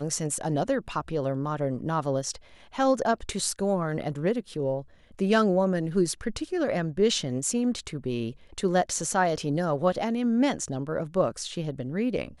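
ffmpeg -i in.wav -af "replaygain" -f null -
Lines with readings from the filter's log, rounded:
track_gain = +6.9 dB
track_peak = 0.209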